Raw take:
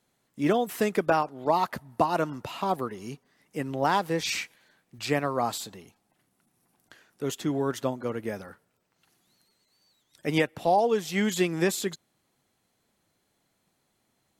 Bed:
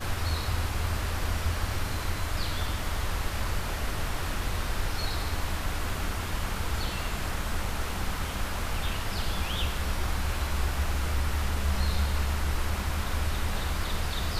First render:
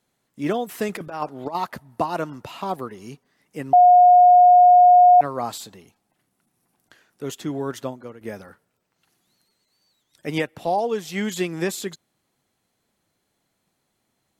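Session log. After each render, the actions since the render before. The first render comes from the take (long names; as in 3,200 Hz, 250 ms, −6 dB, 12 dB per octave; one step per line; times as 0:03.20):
0:00.89–0:01.55: compressor whose output falls as the input rises −27 dBFS, ratio −0.5
0:03.73–0:05.21: beep over 718 Hz −8 dBFS
0:07.80–0:08.21: fade out, to −13.5 dB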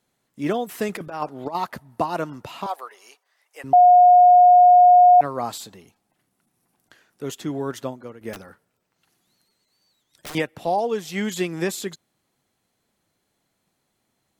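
0:02.66–0:03.64: high-pass filter 600 Hz 24 dB per octave
0:08.33–0:10.35: wrap-around overflow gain 30 dB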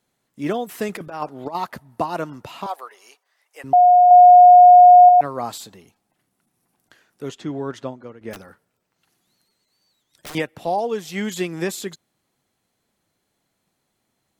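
0:04.08–0:05.09: double-tracking delay 28 ms −4 dB
0:07.29–0:08.31: high-frequency loss of the air 82 metres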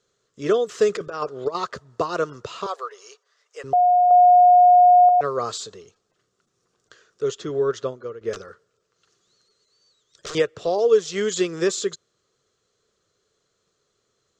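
drawn EQ curve 120 Hz 0 dB, 170 Hz −4 dB, 280 Hz −8 dB, 430 Hz +11 dB, 850 Hz −10 dB, 1,200 Hz +7 dB, 2,200 Hz −4 dB, 3,300 Hz +3 dB, 7,100 Hz +7 dB, 11,000 Hz −26 dB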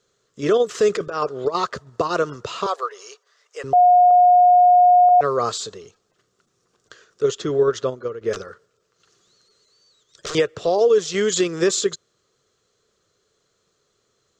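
in parallel at +1.5 dB: output level in coarse steps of 10 dB
on the sum: brickwall limiter −9 dBFS, peak gain reduction 6 dB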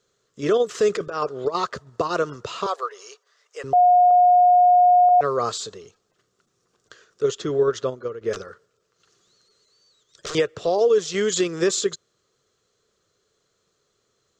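level −2 dB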